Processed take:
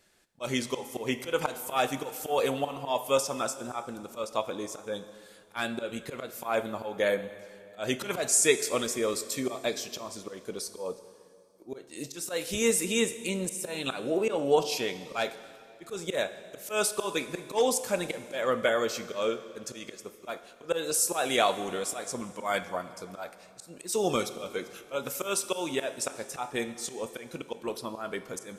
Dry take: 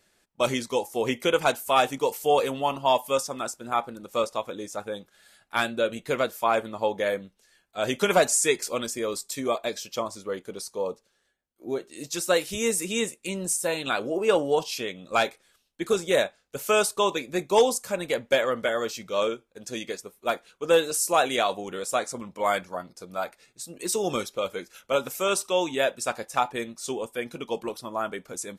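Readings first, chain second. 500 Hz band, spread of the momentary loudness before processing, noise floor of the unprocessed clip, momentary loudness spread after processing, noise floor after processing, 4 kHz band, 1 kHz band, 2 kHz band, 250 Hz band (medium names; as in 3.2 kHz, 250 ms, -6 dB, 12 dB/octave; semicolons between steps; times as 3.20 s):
-4.5 dB, 12 LU, -70 dBFS, 15 LU, -54 dBFS, -3.5 dB, -6.5 dB, -4.0 dB, -2.0 dB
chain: slow attack 180 ms; plate-style reverb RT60 2.4 s, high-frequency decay 0.85×, DRR 11.5 dB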